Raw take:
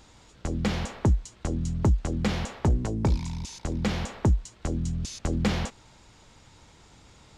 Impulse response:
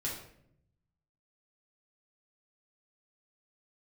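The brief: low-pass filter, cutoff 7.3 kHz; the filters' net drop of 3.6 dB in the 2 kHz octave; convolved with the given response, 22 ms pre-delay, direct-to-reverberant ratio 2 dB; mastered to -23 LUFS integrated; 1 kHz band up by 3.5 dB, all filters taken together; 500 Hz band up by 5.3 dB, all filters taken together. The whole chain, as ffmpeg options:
-filter_complex "[0:a]lowpass=7300,equalizer=f=500:t=o:g=6,equalizer=f=1000:t=o:g=3.5,equalizer=f=2000:t=o:g=-6,asplit=2[s0][s1];[1:a]atrim=start_sample=2205,adelay=22[s2];[s1][s2]afir=irnorm=-1:irlink=0,volume=0.596[s3];[s0][s3]amix=inputs=2:normalize=0,volume=1.12"

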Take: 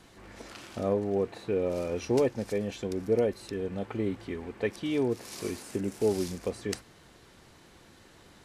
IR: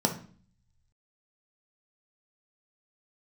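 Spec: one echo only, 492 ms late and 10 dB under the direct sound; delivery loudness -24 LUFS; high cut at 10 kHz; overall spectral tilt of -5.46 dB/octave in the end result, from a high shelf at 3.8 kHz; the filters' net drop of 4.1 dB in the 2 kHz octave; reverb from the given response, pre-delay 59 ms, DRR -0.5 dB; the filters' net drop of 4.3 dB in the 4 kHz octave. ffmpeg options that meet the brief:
-filter_complex "[0:a]lowpass=10000,equalizer=f=2000:t=o:g=-4,highshelf=f=3800:g=3.5,equalizer=f=4000:t=o:g=-7,aecho=1:1:492:0.316,asplit=2[s0][s1];[1:a]atrim=start_sample=2205,adelay=59[s2];[s1][s2]afir=irnorm=-1:irlink=0,volume=0.335[s3];[s0][s3]amix=inputs=2:normalize=0"

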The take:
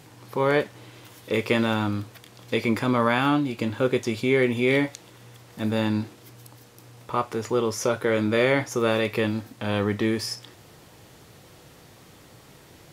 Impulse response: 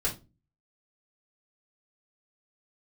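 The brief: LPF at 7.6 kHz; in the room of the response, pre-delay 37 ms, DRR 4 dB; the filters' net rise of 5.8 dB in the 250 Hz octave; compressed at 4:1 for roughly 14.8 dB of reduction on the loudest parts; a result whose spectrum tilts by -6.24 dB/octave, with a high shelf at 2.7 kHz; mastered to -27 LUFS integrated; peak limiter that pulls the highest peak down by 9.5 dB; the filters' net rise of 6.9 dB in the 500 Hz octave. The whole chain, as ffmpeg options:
-filter_complex "[0:a]lowpass=7600,equalizer=f=250:t=o:g=5,equalizer=f=500:t=o:g=7,highshelf=f=2700:g=-4,acompressor=threshold=0.0316:ratio=4,alimiter=level_in=1.06:limit=0.0631:level=0:latency=1,volume=0.944,asplit=2[s0][s1];[1:a]atrim=start_sample=2205,adelay=37[s2];[s1][s2]afir=irnorm=-1:irlink=0,volume=0.299[s3];[s0][s3]amix=inputs=2:normalize=0,volume=2"

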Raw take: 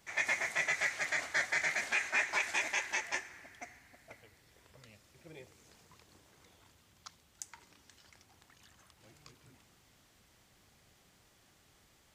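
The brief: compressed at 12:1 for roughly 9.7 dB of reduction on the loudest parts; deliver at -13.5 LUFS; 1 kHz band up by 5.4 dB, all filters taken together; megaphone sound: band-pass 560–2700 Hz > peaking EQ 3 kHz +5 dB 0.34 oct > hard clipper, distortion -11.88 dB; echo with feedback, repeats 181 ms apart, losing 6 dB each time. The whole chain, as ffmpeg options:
-af "equalizer=f=1000:t=o:g=7.5,acompressor=threshold=0.0178:ratio=12,highpass=560,lowpass=2700,equalizer=f=3000:t=o:w=0.34:g=5,aecho=1:1:181|362|543|724|905|1086:0.501|0.251|0.125|0.0626|0.0313|0.0157,asoftclip=type=hard:threshold=0.0168,volume=25.1"

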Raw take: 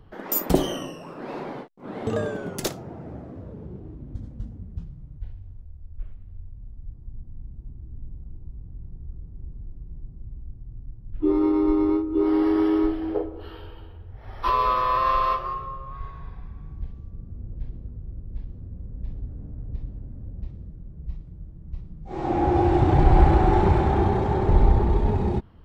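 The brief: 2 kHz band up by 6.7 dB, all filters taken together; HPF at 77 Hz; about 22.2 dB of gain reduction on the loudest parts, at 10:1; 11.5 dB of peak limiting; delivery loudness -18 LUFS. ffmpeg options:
-af "highpass=77,equalizer=f=2000:t=o:g=8.5,acompressor=threshold=0.0158:ratio=10,volume=18.8,alimiter=limit=0.398:level=0:latency=1"

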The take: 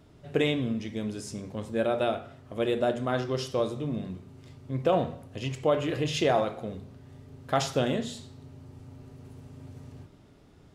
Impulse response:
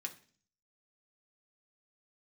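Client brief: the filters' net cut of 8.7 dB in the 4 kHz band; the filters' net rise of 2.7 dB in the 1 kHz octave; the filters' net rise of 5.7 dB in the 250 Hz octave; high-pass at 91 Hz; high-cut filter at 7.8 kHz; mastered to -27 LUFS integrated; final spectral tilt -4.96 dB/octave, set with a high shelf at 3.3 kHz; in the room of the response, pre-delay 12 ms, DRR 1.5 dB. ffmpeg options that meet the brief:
-filter_complex "[0:a]highpass=91,lowpass=7800,equalizer=f=250:t=o:g=7,equalizer=f=1000:t=o:g=4.5,highshelf=f=3300:g=-7,equalizer=f=4000:t=o:g=-7,asplit=2[s0][s1];[1:a]atrim=start_sample=2205,adelay=12[s2];[s1][s2]afir=irnorm=-1:irlink=0,volume=1[s3];[s0][s3]amix=inputs=2:normalize=0,volume=0.841"

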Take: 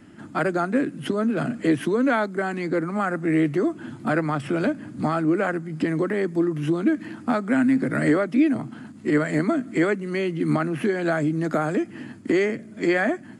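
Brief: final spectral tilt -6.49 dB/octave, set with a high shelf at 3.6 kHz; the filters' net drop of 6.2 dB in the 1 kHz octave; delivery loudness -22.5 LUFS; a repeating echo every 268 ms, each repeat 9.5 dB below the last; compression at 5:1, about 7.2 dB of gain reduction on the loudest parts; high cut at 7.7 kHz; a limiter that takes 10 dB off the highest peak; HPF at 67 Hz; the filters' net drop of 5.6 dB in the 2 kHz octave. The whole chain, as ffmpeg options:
-af "highpass=67,lowpass=7700,equalizer=f=1000:t=o:g=-8.5,equalizer=f=2000:t=o:g=-5,highshelf=f=3600:g=5,acompressor=threshold=0.0631:ratio=5,alimiter=level_in=1.06:limit=0.0631:level=0:latency=1,volume=0.944,aecho=1:1:268|536|804|1072:0.335|0.111|0.0365|0.012,volume=2.99"

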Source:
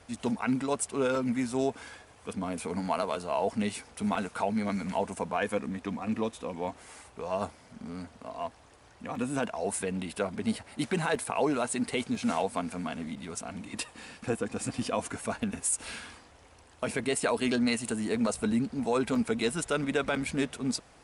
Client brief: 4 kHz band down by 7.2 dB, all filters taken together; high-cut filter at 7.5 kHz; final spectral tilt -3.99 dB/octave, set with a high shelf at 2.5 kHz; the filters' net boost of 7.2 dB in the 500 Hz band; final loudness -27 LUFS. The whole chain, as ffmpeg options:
-af "lowpass=7500,equalizer=f=500:t=o:g=9,highshelf=f=2500:g=-6,equalizer=f=4000:t=o:g=-4,volume=1.06"

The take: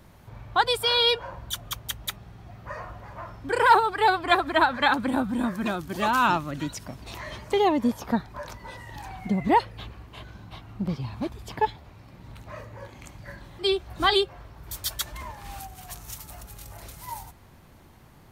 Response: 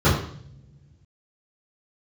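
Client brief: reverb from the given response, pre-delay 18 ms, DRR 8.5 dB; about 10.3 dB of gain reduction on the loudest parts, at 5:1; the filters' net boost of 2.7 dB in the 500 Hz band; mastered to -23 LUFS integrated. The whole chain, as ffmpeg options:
-filter_complex "[0:a]equalizer=f=500:t=o:g=3.5,acompressor=threshold=0.0708:ratio=5,asplit=2[s0][s1];[1:a]atrim=start_sample=2205,adelay=18[s2];[s1][s2]afir=irnorm=-1:irlink=0,volume=0.0355[s3];[s0][s3]amix=inputs=2:normalize=0,volume=2.11"

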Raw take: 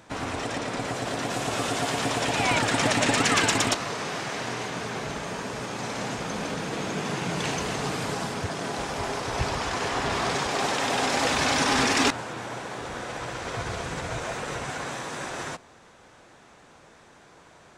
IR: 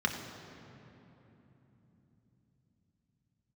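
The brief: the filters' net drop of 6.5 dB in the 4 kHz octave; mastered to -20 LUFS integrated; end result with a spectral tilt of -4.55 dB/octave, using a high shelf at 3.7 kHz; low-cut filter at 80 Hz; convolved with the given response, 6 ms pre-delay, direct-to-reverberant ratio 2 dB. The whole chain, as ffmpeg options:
-filter_complex "[0:a]highpass=80,highshelf=f=3700:g=-3.5,equalizer=f=4000:t=o:g=-6.5,asplit=2[s0][s1];[1:a]atrim=start_sample=2205,adelay=6[s2];[s1][s2]afir=irnorm=-1:irlink=0,volume=0.299[s3];[s0][s3]amix=inputs=2:normalize=0,volume=2.11"

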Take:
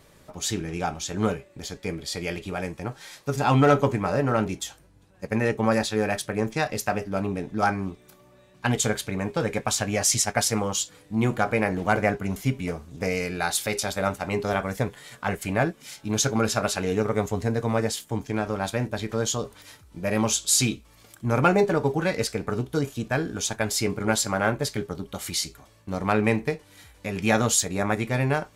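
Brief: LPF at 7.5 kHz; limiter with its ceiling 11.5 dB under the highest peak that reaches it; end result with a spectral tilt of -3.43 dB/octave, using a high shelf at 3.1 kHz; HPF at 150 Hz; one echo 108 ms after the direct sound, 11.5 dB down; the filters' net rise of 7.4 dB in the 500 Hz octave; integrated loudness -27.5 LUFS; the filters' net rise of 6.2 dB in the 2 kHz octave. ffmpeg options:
-af "highpass=150,lowpass=7500,equalizer=f=500:t=o:g=8.5,equalizer=f=2000:t=o:g=6.5,highshelf=f=3100:g=3,alimiter=limit=0.282:level=0:latency=1,aecho=1:1:108:0.266,volume=0.668"

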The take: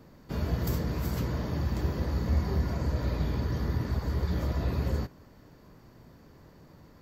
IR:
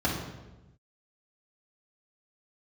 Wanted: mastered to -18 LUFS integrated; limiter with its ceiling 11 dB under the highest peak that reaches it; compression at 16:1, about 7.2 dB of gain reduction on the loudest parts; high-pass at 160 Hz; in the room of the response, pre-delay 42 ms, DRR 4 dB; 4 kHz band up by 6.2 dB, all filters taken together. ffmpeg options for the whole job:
-filter_complex "[0:a]highpass=160,equalizer=f=4000:t=o:g=7.5,acompressor=threshold=0.0141:ratio=16,alimiter=level_in=4.47:limit=0.0631:level=0:latency=1,volume=0.224,asplit=2[s0][s1];[1:a]atrim=start_sample=2205,adelay=42[s2];[s1][s2]afir=irnorm=-1:irlink=0,volume=0.178[s3];[s0][s3]amix=inputs=2:normalize=0,volume=15.8"

